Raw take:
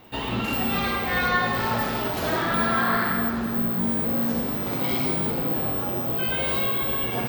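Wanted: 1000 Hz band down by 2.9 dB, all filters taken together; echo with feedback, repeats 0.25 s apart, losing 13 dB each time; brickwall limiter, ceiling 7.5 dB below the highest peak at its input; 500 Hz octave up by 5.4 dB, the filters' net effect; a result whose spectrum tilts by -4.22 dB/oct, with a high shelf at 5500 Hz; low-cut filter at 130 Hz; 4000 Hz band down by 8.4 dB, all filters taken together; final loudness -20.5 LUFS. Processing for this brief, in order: HPF 130 Hz; bell 500 Hz +8.5 dB; bell 1000 Hz -6 dB; bell 4000 Hz -8 dB; high shelf 5500 Hz -8.5 dB; limiter -18 dBFS; feedback echo 0.25 s, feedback 22%, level -13 dB; gain +6.5 dB

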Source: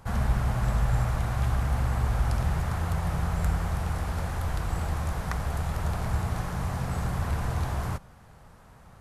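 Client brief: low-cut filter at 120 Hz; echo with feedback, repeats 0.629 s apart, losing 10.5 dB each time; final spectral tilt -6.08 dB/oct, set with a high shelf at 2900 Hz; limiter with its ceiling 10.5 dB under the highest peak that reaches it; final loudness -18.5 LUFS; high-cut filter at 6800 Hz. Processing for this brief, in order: HPF 120 Hz; LPF 6800 Hz; high shelf 2900 Hz -3.5 dB; limiter -25 dBFS; feedback echo 0.629 s, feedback 30%, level -10.5 dB; gain +16.5 dB

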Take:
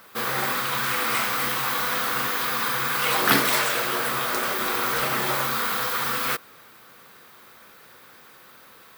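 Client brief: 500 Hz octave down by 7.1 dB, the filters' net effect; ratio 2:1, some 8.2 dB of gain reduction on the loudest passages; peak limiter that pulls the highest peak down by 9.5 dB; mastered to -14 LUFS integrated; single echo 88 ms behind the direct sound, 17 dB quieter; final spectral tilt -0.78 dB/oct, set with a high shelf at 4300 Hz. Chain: bell 500 Hz -9 dB; high shelf 4300 Hz +4 dB; compressor 2:1, threshold -28 dBFS; limiter -21 dBFS; echo 88 ms -17 dB; gain +14.5 dB

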